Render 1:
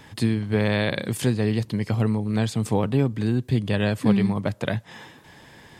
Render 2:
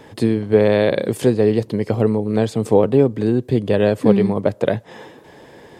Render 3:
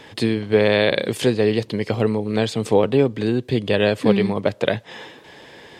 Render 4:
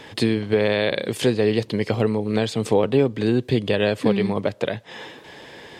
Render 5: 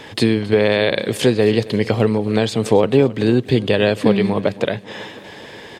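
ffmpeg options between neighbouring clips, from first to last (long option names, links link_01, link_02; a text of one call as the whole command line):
ffmpeg -i in.wav -af "equalizer=frequency=460:width_type=o:width=1.6:gain=14,volume=-1dB" out.wav
ffmpeg -i in.wav -af "equalizer=frequency=3200:width=0.54:gain=11.5,volume=-3.5dB" out.wav
ffmpeg -i in.wav -af "alimiter=limit=-9.5dB:level=0:latency=1:release=418,volume=1.5dB" out.wav
ffmpeg -i in.wav -af "aecho=1:1:270|540|810|1080|1350:0.112|0.0628|0.0352|0.0197|0.011,volume=4.5dB" out.wav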